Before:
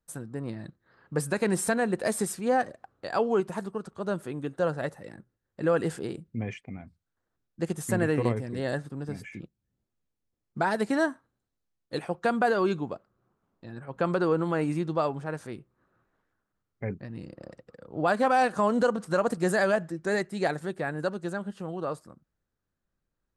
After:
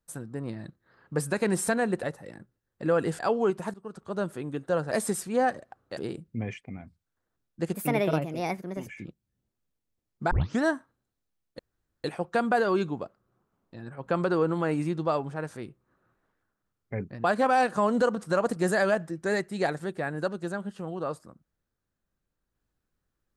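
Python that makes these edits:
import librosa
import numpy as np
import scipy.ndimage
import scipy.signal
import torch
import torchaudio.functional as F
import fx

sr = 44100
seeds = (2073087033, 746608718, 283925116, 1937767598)

y = fx.edit(x, sr, fx.swap(start_s=2.03, length_s=1.06, other_s=4.81, other_length_s=1.16),
    fx.fade_in_from(start_s=3.64, length_s=0.31, floor_db=-18.0),
    fx.speed_span(start_s=7.74, length_s=1.48, speed=1.31),
    fx.tape_start(start_s=10.66, length_s=0.3),
    fx.insert_room_tone(at_s=11.94, length_s=0.45),
    fx.cut(start_s=17.14, length_s=0.91), tone=tone)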